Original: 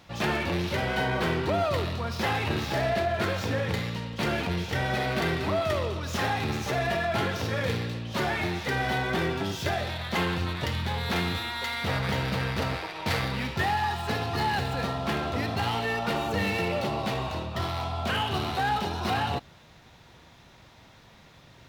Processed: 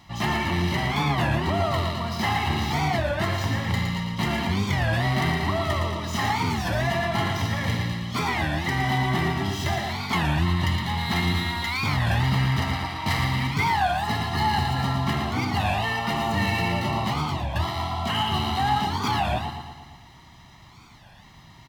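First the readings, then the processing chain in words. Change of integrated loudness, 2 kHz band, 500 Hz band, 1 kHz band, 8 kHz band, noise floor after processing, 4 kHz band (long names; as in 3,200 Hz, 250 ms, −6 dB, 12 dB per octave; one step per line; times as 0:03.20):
+3.5 dB, +2.5 dB, −1.5 dB, +4.5 dB, +4.0 dB, −49 dBFS, +3.5 dB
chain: comb filter 1 ms, depth 77%
repeating echo 114 ms, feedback 57%, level −6 dB
wow of a warped record 33 1/3 rpm, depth 250 cents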